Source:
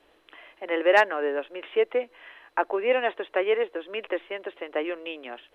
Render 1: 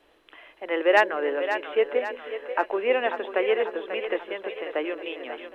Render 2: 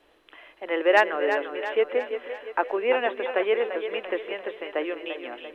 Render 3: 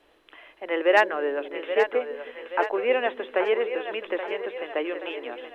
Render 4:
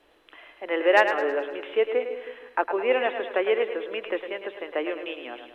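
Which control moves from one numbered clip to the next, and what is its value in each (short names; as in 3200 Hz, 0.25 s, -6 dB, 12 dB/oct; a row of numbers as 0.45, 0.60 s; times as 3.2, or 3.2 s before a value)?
split-band echo, highs: 0.54, 0.343, 0.827, 0.106 s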